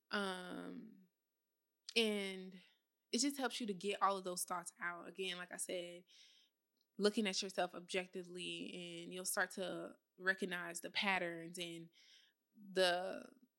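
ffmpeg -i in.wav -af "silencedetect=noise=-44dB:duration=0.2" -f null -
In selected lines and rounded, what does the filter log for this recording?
silence_start: 0.79
silence_end: 1.89 | silence_duration: 1.10
silence_start: 2.42
silence_end: 3.13 | silence_duration: 0.72
silence_start: 5.90
silence_end: 6.99 | silence_duration: 1.09
silence_start: 9.88
silence_end: 10.24 | silence_duration: 0.36
silence_start: 11.77
silence_end: 12.76 | silence_duration: 0.99
silence_start: 13.25
silence_end: 13.58 | silence_duration: 0.33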